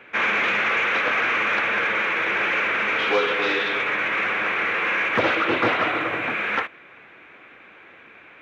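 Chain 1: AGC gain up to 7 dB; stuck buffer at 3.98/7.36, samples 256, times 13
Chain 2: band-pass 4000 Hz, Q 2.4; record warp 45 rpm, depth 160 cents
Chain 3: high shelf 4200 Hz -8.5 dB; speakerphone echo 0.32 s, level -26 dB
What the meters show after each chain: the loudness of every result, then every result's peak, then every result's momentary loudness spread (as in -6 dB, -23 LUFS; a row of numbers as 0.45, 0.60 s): -15.0, -32.0, -22.5 LUFS; -2.5, -24.5, -7.5 dBFS; 5, 5, 3 LU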